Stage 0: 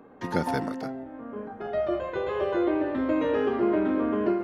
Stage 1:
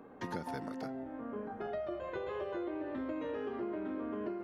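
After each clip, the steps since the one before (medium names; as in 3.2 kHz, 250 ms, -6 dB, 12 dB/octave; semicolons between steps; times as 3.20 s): compression 6:1, threshold -34 dBFS, peak gain reduction 13.5 dB; trim -2.5 dB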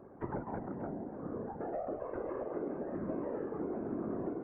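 Gaussian low-pass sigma 5.8 samples; whisper effect; trim +1 dB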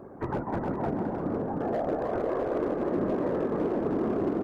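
overload inside the chain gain 33 dB; bouncing-ball echo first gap 310 ms, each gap 0.65×, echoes 5; trim +8.5 dB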